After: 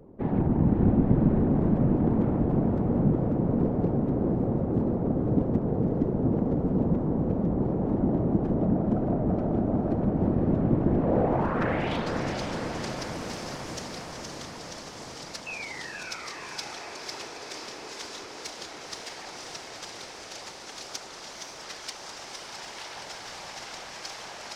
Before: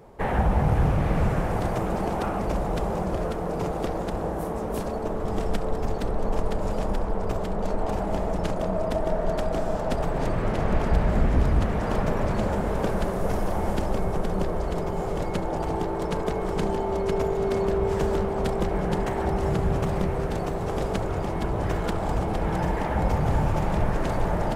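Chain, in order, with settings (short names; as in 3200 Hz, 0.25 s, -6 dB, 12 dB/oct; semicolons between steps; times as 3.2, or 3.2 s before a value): self-modulated delay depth 0.38 ms; painted sound fall, 15.46–17.29, 460–2700 Hz -34 dBFS; band-pass sweep 220 Hz -> 5300 Hz, 10.86–12.14; whisperiser; on a send: diffused feedback echo 0.524 s, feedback 70%, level -5 dB; on the sum: gain +8.5 dB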